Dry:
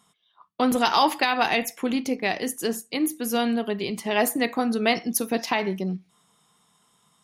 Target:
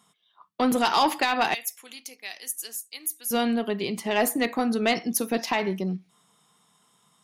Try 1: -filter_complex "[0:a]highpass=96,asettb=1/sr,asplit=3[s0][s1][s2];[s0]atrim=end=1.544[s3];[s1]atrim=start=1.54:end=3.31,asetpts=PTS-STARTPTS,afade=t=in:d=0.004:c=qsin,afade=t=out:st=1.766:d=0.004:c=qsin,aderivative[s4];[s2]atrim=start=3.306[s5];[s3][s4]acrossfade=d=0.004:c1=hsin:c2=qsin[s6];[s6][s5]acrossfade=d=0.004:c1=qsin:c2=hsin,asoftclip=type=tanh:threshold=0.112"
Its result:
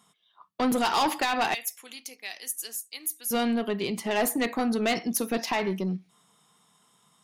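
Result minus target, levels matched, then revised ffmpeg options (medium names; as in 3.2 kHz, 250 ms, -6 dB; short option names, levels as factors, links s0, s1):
saturation: distortion +8 dB
-filter_complex "[0:a]highpass=96,asettb=1/sr,asplit=3[s0][s1][s2];[s0]atrim=end=1.544[s3];[s1]atrim=start=1.54:end=3.31,asetpts=PTS-STARTPTS,afade=t=in:d=0.004:c=qsin,afade=t=out:st=1.766:d=0.004:c=qsin,aderivative[s4];[s2]atrim=start=3.306[s5];[s3][s4]acrossfade=d=0.004:c1=hsin:c2=qsin[s6];[s6][s5]acrossfade=d=0.004:c1=qsin:c2=hsin,asoftclip=type=tanh:threshold=0.251"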